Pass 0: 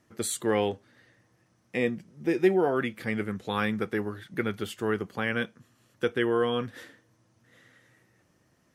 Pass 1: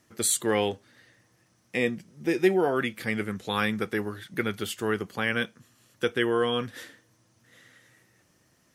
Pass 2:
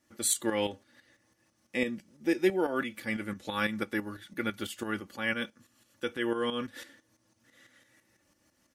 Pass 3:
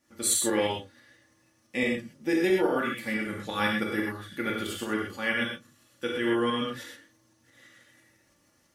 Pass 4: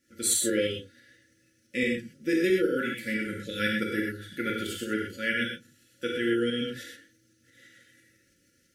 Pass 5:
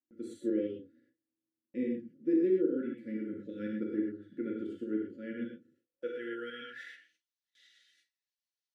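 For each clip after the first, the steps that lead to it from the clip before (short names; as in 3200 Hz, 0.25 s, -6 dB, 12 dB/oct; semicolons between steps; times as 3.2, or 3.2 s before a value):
high shelf 2500 Hz +8 dB
comb 3.5 ms, depth 60%; tremolo saw up 6 Hz, depth 65%; gain -2.5 dB
non-linear reverb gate 0.15 s flat, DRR -2 dB
FFT band-reject 560–1300 Hz
band-pass sweep 300 Hz -> 3900 Hz, 5.57–7.37; gate with hold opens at -59 dBFS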